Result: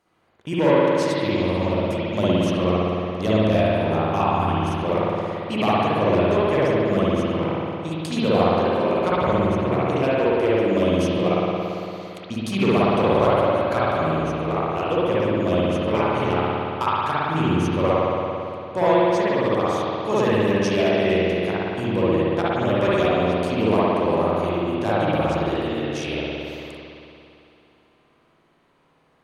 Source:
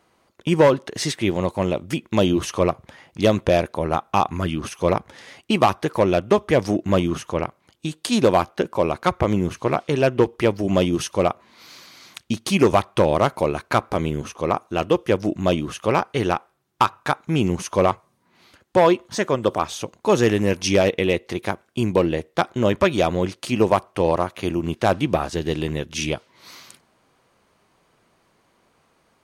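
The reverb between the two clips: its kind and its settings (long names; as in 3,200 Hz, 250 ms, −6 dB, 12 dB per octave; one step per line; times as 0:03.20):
spring reverb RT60 2.8 s, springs 56 ms, chirp 20 ms, DRR −9.5 dB
level −9.5 dB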